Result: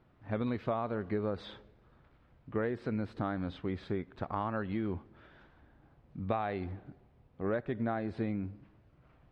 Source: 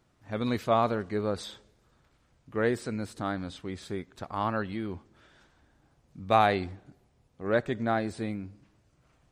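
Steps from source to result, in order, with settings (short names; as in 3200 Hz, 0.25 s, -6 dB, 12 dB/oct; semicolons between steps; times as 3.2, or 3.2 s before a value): compressor 10:1, threshold -32 dBFS, peak gain reduction 15.5 dB; air absorption 360 m; gain +3.5 dB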